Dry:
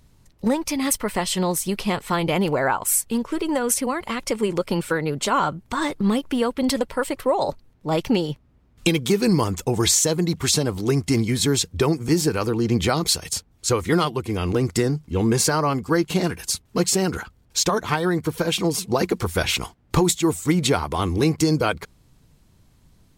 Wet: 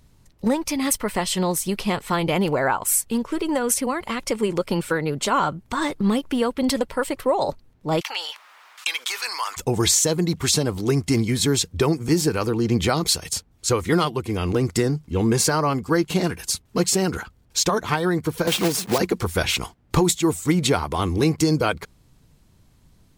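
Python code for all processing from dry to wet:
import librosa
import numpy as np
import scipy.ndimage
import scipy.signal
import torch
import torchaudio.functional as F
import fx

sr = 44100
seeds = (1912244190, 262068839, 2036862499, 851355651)

y = fx.chain(x, sr, fx.highpass(hz=990.0, slope=24),
    fx.high_shelf(hz=6300.0, db=-6.5),
    fx.env_flatten(amount_pct=50), at=(8.01, 9.57))
y = fx.chain(y, sr, fx.block_float(bits=3),
    fx.low_shelf(hz=76.0, db=-11.0),
    fx.band_squash(depth_pct=70), at=(18.47, 19.0))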